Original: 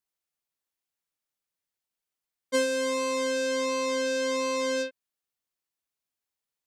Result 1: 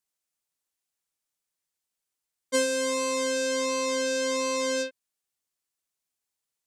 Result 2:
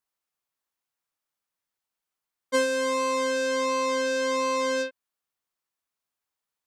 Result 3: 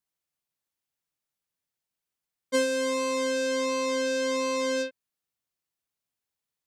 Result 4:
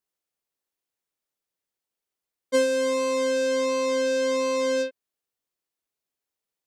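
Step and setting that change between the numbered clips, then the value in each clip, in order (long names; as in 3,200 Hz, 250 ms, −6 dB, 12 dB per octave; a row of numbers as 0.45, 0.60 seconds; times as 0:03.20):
parametric band, centre frequency: 8,100, 1,100, 130, 420 Hertz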